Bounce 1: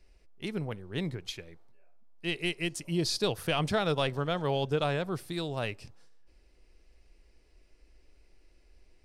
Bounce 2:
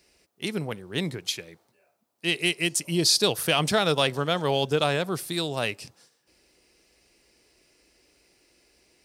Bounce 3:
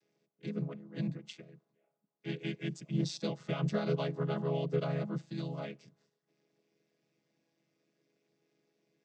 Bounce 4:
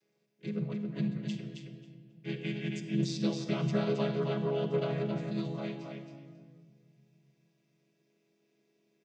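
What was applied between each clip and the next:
high-pass 140 Hz 12 dB/octave; treble shelf 4.1 kHz +11 dB; trim +5 dB
vocoder on a held chord minor triad, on C#3; trim -8.5 dB
feedback delay 270 ms, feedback 16%, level -5 dB; simulated room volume 3100 m³, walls mixed, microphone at 1.1 m

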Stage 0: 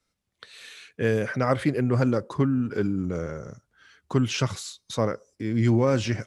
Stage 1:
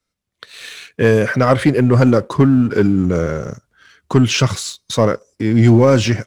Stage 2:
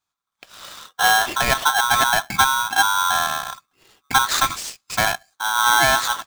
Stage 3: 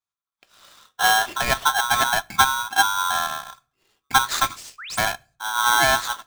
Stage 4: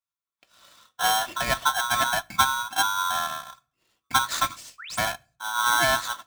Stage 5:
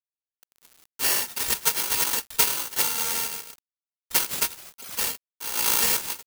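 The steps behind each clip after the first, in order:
band-stop 830 Hz, Q 17; waveshaping leveller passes 1; level rider gain up to 9 dB; trim +1 dB
rippled EQ curve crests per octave 0.77, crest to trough 9 dB; polarity switched at an audio rate 1.2 kHz; trim -5.5 dB
painted sound rise, 4.78–4.99 s, 1.1–11 kHz -28 dBFS; on a send at -13.5 dB: reverberation RT60 0.45 s, pre-delay 3 ms; on the sum: upward expansion 1.5:1, over -35 dBFS
comb of notches 410 Hz; trim -2.5 dB
bit-reversed sample order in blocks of 256 samples; word length cut 8-bit, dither none; careless resampling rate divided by 6×, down none, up zero stuff; trim -8.5 dB

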